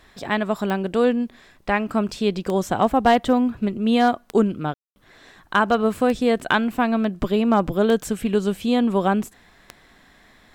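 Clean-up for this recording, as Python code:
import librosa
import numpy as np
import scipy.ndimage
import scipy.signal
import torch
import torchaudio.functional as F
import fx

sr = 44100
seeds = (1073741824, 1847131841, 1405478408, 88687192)

y = fx.fix_declip(x, sr, threshold_db=-7.0)
y = fx.fix_declick_ar(y, sr, threshold=10.0)
y = fx.fix_ambience(y, sr, seeds[0], print_start_s=9.74, print_end_s=10.24, start_s=4.74, end_s=4.96)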